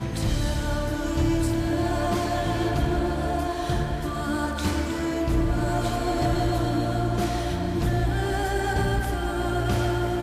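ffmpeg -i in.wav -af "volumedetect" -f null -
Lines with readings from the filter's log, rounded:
mean_volume: -24.5 dB
max_volume: -14.1 dB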